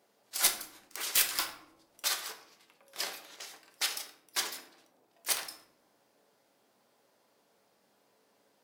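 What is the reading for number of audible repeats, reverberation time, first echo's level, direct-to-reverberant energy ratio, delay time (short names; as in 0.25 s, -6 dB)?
none, 0.80 s, none, 4.0 dB, none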